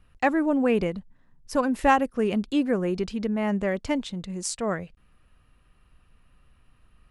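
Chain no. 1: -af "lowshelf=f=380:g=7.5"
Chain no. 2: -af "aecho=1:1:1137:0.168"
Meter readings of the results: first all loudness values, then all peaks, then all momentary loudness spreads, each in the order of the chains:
-22.0 LUFS, -25.5 LUFS; -5.5 dBFS, -7.5 dBFS; 10 LU, 22 LU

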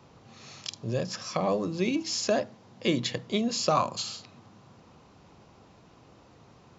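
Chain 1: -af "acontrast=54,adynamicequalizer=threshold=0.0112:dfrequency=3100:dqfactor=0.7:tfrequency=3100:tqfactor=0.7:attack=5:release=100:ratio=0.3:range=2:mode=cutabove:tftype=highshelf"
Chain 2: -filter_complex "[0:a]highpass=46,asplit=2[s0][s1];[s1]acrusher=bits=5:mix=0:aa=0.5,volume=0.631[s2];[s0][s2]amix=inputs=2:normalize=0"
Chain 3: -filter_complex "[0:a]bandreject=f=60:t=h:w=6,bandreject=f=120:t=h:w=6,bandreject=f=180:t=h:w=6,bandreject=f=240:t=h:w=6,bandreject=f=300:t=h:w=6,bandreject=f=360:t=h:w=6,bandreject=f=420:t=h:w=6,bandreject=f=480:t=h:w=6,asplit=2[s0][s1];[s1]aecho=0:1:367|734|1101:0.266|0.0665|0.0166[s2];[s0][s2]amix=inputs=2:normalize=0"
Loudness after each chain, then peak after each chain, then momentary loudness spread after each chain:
-24.0 LUFS, -25.0 LUFS, -29.5 LUFS; -6.0 dBFS, -6.5 dBFS, -11.0 dBFS; 13 LU, 12 LU, 14 LU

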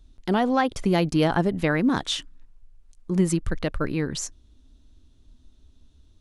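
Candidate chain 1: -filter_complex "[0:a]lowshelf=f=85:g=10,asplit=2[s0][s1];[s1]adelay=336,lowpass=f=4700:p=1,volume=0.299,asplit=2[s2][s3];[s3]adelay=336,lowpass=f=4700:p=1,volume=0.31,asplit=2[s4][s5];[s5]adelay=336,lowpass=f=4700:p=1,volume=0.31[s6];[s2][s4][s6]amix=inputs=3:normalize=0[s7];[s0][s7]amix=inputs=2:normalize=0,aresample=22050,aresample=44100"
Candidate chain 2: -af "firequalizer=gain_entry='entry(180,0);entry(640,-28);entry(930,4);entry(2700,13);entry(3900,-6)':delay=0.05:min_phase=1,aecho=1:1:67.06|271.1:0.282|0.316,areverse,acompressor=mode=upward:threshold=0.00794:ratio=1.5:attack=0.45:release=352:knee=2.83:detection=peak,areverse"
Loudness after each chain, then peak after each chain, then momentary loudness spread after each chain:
-23.0 LUFS, -23.5 LUFS; -6.5 dBFS, -6.0 dBFS; 16 LU, 13 LU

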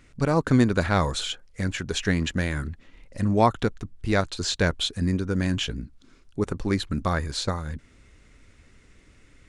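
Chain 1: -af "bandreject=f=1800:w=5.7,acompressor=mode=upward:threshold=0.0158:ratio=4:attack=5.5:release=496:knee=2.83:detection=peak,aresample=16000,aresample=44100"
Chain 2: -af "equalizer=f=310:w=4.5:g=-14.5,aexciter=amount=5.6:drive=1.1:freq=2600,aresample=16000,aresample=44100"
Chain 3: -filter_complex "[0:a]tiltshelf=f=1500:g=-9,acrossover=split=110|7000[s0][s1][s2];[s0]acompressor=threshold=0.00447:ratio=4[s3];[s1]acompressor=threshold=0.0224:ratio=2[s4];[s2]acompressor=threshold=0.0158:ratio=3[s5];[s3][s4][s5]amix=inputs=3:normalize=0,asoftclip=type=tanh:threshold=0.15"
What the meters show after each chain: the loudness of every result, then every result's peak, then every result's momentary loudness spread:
-26.0 LUFS, -21.5 LUFS, -32.5 LUFS; -6.5 dBFS, -2.5 dBFS, -17.0 dBFS; 15 LU, 15 LU, 12 LU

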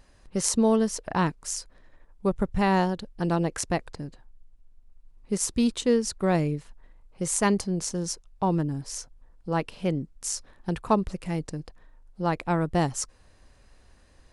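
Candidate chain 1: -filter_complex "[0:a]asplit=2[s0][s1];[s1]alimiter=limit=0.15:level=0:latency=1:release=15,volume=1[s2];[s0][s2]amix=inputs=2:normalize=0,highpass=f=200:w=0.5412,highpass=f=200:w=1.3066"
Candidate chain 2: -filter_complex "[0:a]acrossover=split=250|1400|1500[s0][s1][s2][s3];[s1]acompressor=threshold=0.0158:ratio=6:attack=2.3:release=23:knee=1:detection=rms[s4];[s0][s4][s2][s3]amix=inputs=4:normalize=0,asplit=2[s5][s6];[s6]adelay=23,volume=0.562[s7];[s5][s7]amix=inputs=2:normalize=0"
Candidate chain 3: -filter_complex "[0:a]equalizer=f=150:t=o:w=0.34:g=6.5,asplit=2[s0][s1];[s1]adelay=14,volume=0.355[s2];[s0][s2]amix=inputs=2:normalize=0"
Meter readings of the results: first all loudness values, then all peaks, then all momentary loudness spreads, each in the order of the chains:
-23.5 LUFS, -29.0 LUFS, -26.0 LUFS; -4.0 dBFS, -6.5 dBFS, -6.0 dBFS; 11 LU, 11 LU, 11 LU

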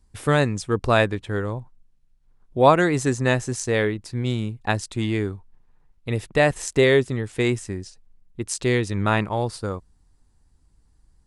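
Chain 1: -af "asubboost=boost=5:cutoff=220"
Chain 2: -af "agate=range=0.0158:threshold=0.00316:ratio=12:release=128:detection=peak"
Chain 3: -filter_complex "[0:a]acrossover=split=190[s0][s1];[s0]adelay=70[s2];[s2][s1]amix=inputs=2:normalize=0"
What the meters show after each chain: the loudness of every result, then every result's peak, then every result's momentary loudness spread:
-19.0 LUFS, -22.5 LUFS, -23.0 LUFS; -2.5 dBFS, -2.5 dBFS, -1.5 dBFS; 11 LU, 14 LU, 15 LU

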